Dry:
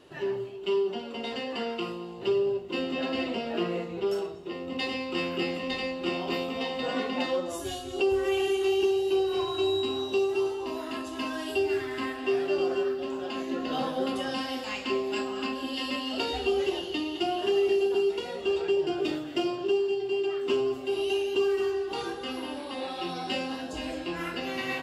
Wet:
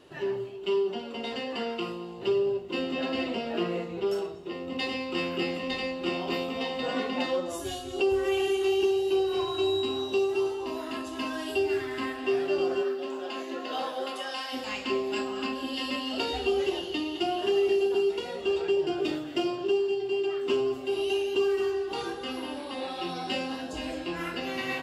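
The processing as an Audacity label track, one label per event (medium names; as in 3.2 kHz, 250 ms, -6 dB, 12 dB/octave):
12.810000	14.520000	high-pass 230 Hz -> 730 Hz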